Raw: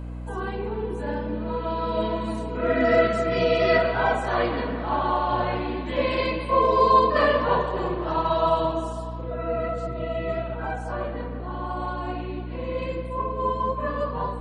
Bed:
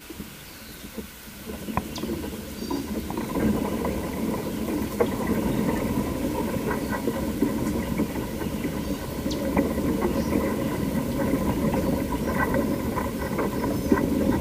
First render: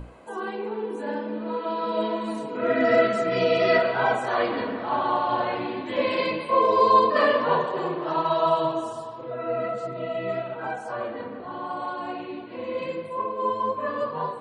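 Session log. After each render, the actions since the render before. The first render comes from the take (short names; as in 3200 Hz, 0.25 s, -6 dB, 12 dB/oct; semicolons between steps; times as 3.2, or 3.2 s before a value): notches 60/120/180/240/300/360 Hz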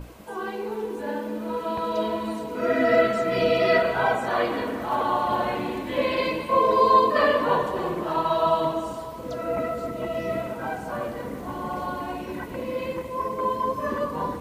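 add bed -12.5 dB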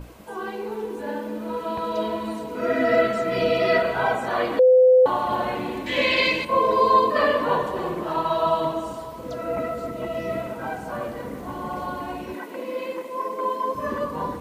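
4.59–5.06 bleep 510 Hz -10.5 dBFS; 5.86–6.45 band shelf 3600 Hz +10.5 dB 2.4 oct; 12.34–13.75 HPF 250 Hz 24 dB/oct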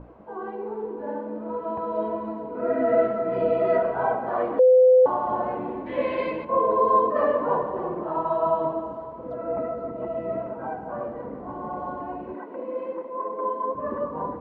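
Chebyshev low-pass 900 Hz, order 2; low shelf 160 Hz -7 dB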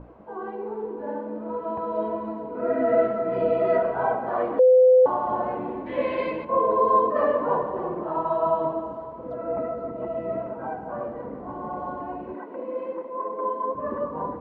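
nothing audible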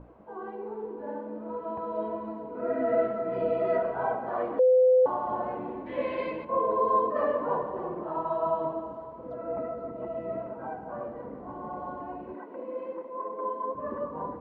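gain -5 dB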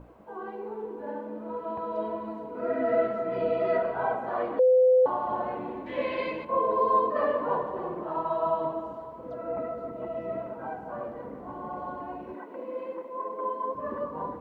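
high shelf 2800 Hz +11 dB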